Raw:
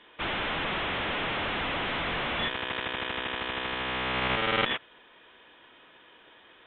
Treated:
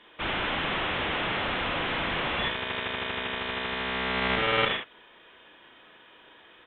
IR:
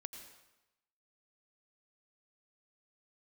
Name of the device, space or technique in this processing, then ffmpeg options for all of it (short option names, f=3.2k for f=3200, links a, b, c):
slapback doubling: -filter_complex "[0:a]asplit=3[a][b][c];[b]adelay=36,volume=-6dB[d];[c]adelay=68,volume=-8dB[e];[a][d][e]amix=inputs=3:normalize=0"